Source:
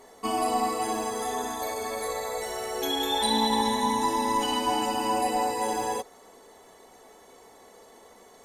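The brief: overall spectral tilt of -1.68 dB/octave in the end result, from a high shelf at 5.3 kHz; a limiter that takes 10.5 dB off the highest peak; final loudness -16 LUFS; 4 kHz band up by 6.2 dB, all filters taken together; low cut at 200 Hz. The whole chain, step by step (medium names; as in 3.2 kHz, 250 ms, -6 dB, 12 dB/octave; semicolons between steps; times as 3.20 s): high-pass 200 Hz; peaking EQ 4 kHz +4.5 dB; treble shelf 5.3 kHz +7.5 dB; trim +11.5 dB; peak limiter -7 dBFS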